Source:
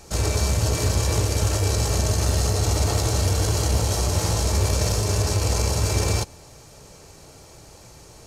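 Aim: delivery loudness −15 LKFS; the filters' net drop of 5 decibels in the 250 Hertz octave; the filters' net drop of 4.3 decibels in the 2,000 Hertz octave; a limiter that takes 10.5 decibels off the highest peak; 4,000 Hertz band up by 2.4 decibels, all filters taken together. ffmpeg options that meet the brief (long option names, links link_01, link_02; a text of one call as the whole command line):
ffmpeg -i in.wav -af "equalizer=frequency=250:width_type=o:gain=-8,equalizer=frequency=2000:width_type=o:gain=-7,equalizer=frequency=4000:width_type=o:gain=4.5,volume=13.5dB,alimiter=limit=-6dB:level=0:latency=1" out.wav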